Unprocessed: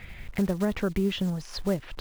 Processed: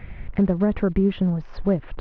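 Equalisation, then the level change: air absorption 110 m; tape spacing loss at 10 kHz 39 dB; +7.5 dB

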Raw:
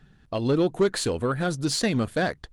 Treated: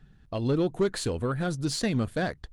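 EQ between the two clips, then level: low shelf 150 Hz +8 dB; -5.0 dB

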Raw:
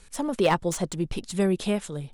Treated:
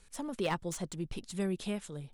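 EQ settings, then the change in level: dynamic EQ 610 Hz, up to -4 dB, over -34 dBFS, Q 0.75; -8.5 dB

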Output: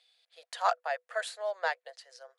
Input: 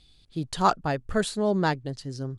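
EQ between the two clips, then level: rippled Chebyshev high-pass 480 Hz, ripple 9 dB; bell 1000 Hz +2.5 dB 0.26 oct; 0.0 dB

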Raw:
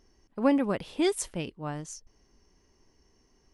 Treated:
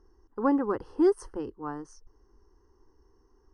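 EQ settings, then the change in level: running mean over 12 samples; bell 260 Hz -6.5 dB 0.24 oct; fixed phaser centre 630 Hz, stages 6; +5.0 dB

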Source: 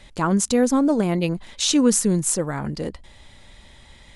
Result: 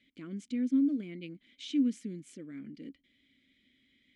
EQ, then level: vowel filter i; -6.0 dB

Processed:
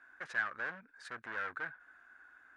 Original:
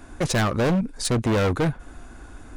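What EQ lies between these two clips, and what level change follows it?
band-pass 1600 Hz, Q 6.3; -2.0 dB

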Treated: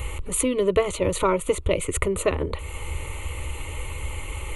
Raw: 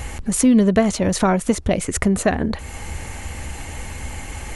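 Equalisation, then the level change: fixed phaser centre 1100 Hz, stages 8; +1.0 dB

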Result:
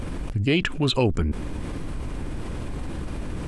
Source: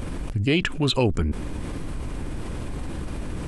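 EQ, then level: high shelf 9200 Hz -5.5 dB; 0.0 dB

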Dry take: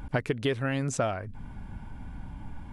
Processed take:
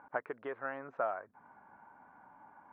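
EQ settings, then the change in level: HPF 800 Hz 12 dB/oct; LPF 1400 Hz 24 dB/oct; 0.0 dB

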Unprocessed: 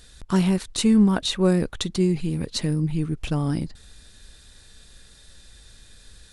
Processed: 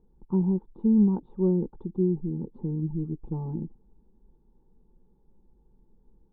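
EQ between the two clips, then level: vocal tract filter u; fixed phaser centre 430 Hz, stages 8; +7.0 dB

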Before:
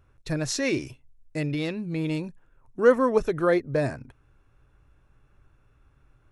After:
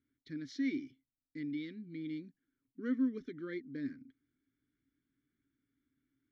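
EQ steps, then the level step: vowel filter i; low shelf 150 Hz -5.5 dB; fixed phaser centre 2600 Hz, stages 6; +1.0 dB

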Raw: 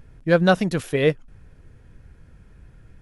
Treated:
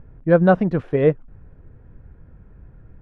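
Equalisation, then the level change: LPF 1200 Hz 12 dB/oct; +3.0 dB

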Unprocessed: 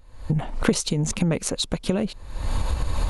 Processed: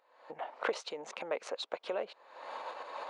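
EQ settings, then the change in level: HPF 540 Hz 24 dB/oct; tape spacing loss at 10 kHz 33 dB; -1.0 dB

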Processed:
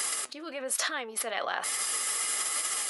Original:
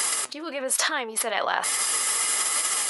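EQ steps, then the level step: bell 140 Hz -10 dB 0.36 oct; notch 950 Hz, Q 7.2; -6.0 dB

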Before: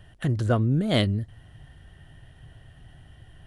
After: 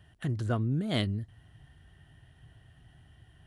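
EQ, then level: HPF 45 Hz; bell 540 Hz -5.5 dB 0.39 oct; -6.5 dB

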